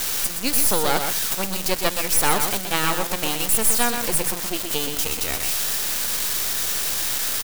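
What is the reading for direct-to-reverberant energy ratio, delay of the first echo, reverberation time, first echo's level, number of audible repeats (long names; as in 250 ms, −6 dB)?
no reverb audible, 124 ms, no reverb audible, −6.5 dB, 1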